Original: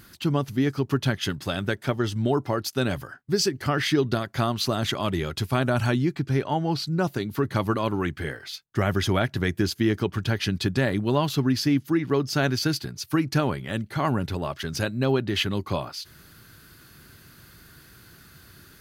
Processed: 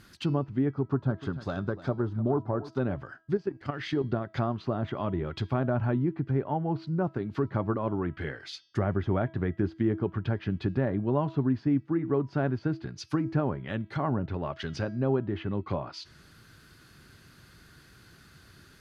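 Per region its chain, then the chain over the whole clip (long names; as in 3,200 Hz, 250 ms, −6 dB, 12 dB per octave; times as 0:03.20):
0:00.73–0:02.80: phase distortion by the signal itself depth 0.12 ms + flat-topped bell 2,400 Hz −9.5 dB 1 octave + single-tap delay 297 ms −16 dB
0:03.37–0:04.04: mu-law and A-law mismatch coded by A + output level in coarse steps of 11 dB + one half of a high-frequency compander decoder only
whole clip: treble cut that deepens with the level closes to 1,100 Hz, closed at −22 dBFS; Bessel low-pass filter 7,900 Hz; hum removal 325.4 Hz, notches 19; level −3.5 dB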